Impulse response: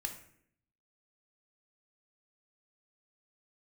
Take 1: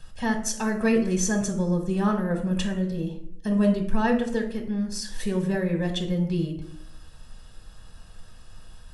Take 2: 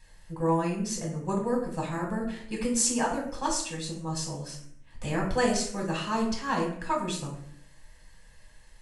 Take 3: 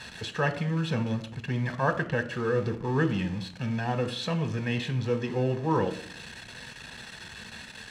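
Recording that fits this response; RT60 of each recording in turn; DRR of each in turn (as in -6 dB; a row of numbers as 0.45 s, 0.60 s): 1; 0.65 s, 0.65 s, 0.65 s; 4.0 dB, -1.5 dB, 9.0 dB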